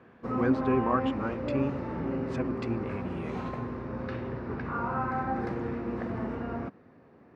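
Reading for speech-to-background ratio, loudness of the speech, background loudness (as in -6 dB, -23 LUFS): 0.0 dB, -33.5 LUFS, -33.5 LUFS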